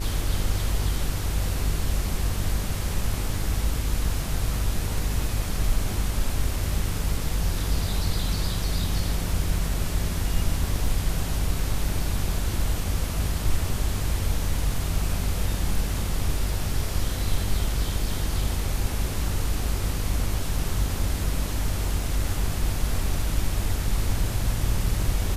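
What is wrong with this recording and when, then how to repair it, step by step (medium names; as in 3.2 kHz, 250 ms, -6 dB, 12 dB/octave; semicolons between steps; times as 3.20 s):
buzz 50 Hz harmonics 38 -29 dBFS
10.86 s: dropout 2.4 ms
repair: de-hum 50 Hz, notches 38; interpolate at 10.86 s, 2.4 ms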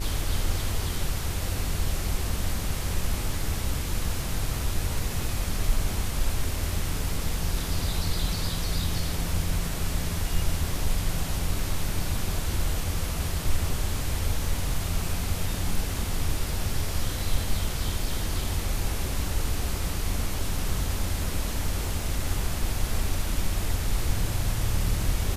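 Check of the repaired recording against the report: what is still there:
nothing left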